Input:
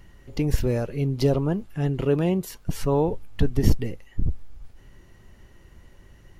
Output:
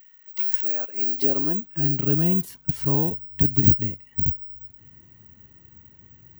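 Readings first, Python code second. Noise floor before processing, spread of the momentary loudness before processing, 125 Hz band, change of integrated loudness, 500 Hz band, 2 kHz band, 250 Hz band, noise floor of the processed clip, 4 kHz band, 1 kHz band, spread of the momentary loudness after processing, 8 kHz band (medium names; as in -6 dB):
-52 dBFS, 10 LU, -1.5 dB, +4.5 dB, -7.5 dB, -5.0 dB, -1.0 dB, -54 dBFS, no reading, -6.5 dB, 10 LU, -3.5 dB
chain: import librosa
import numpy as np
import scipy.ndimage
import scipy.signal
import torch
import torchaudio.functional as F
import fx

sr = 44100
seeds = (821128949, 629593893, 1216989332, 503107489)

y = fx.graphic_eq_10(x, sr, hz=(125, 250, 500), db=(5, 6, -6))
y = (np.kron(y[::2], np.eye(2)[0]) * 2)[:len(y)]
y = fx.filter_sweep_highpass(y, sr, from_hz=1900.0, to_hz=81.0, start_s=0.01, end_s=2.5, q=1.1)
y = y * librosa.db_to_amplitude(-5.0)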